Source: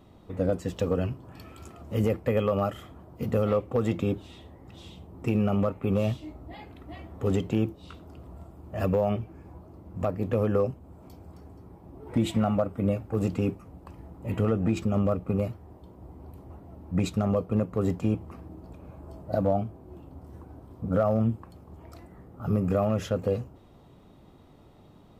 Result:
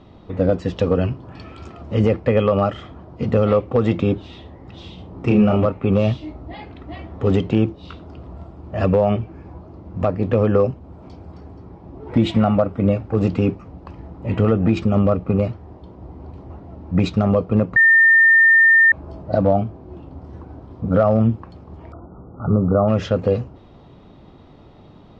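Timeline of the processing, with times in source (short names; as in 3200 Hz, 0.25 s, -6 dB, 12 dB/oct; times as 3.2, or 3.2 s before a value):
4.95–5.66 doubler 33 ms -3.5 dB
17.76–18.92 bleep 1810 Hz -17 dBFS
21.92–22.88 brick-wall FIR low-pass 1500 Hz
whole clip: LPF 5200 Hz 24 dB/oct; gain +8.5 dB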